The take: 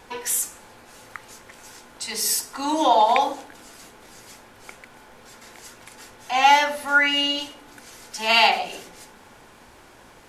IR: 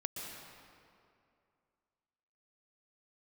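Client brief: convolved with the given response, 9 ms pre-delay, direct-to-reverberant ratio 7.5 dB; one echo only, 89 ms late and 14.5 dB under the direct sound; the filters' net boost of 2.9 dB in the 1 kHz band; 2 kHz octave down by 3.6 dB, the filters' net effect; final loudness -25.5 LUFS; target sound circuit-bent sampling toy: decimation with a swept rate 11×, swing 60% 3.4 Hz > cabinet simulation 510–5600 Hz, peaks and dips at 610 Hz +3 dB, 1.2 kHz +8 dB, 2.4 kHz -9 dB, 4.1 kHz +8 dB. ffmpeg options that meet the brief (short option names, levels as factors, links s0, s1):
-filter_complex "[0:a]equalizer=f=1000:t=o:g=3.5,equalizer=f=2000:t=o:g=-6.5,aecho=1:1:89:0.188,asplit=2[s0][s1];[1:a]atrim=start_sample=2205,adelay=9[s2];[s1][s2]afir=irnorm=-1:irlink=0,volume=0.398[s3];[s0][s3]amix=inputs=2:normalize=0,acrusher=samples=11:mix=1:aa=0.000001:lfo=1:lforange=6.6:lforate=3.4,highpass=510,equalizer=f=610:t=q:w=4:g=3,equalizer=f=1200:t=q:w=4:g=8,equalizer=f=2400:t=q:w=4:g=-9,equalizer=f=4100:t=q:w=4:g=8,lowpass=f=5600:w=0.5412,lowpass=f=5600:w=1.3066,volume=0.473"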